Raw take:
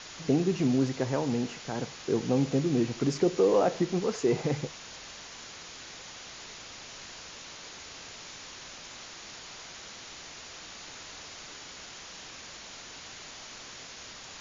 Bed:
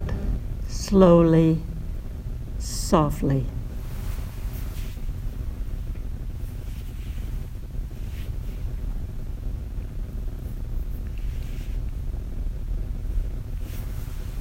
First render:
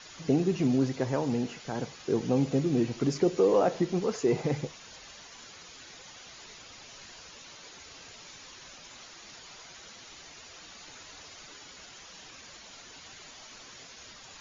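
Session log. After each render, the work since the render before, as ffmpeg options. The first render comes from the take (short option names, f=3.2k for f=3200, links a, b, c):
-af "afftdn=nr=8:nf=-46"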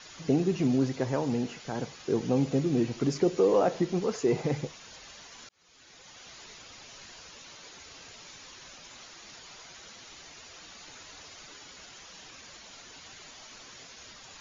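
-filter_complex "[0:a]asplit=2[a][b];[a]atrim=end=5.49,asetpts=PTS-STARTPTS,afade=t=out:st=5.486:d=0.004:c=hsin[c];[b]atrim=start=5.49,asetpts=PTS-STARTPTS,afade=t=in:d=0.81[d];[c][d]concat=n=2:v=0:a=1"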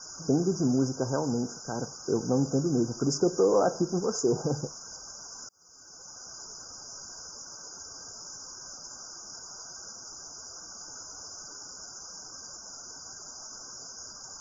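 -af "afftfilt=real='re*(1-between(b*sr/4096,1600,4800))':imag='im*(1-between(b*sr/4096,1600,4800))':win_size=4096:overlap=0.75,highshelf=f=3.1k:g=11.5"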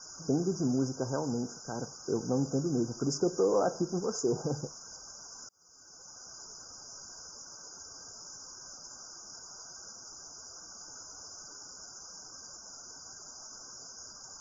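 -af "volume=-4dB"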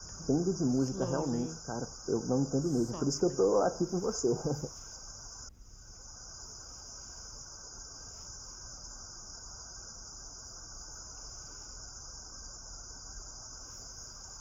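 -filter_complex "[1:a]volume=-24dB[a];[0:a][a]amix=inputs=2:normalize=0"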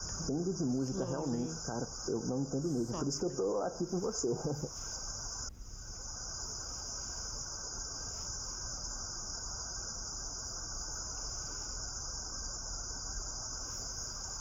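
-filter_complex "[0:a]asplit=2[a][b];[b]acompressor=threshold=-39dB:ratio=6,volume=-0.5dB[c];[a][c]amix=inputs=2:normalize=0,alimiter=level_in=1dB:limit=-24dB:level=0:latency=1:release=199,volume=-1dB"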